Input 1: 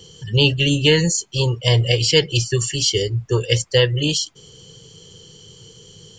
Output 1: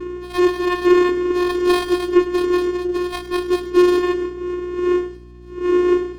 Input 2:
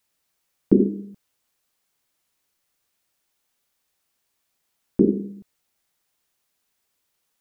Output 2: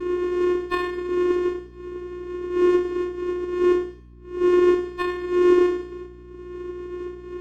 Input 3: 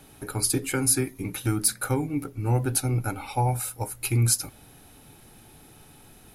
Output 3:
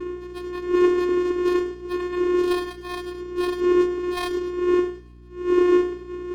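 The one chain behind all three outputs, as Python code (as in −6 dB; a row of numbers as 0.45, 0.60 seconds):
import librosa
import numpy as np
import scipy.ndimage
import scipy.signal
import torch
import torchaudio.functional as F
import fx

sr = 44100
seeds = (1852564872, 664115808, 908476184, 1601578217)

y = fx.octave_mirror(x, sr, pivot_hz=580.0)
y = fx.dmg_wind(y, sr, seeds[0], corner_hz=470.0, level_db=-22.0)
y = fx.high_shelf(y, sr, hz=4700.0, db=12.0)
y = fx.vocoder(y, sr, bands=4, carrier='square', carrier_hz=357.0)
y = fx.add_hum(y, sr, base_hz=60, snr_db=23)
y = fx.echo_feedback(y, sr, ms=103, feedback_pct=32, wet_db=-14.5)
y = fx.running_max(y, sr, window=5)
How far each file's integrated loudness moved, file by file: −0.5, −0.5, +2.5 LU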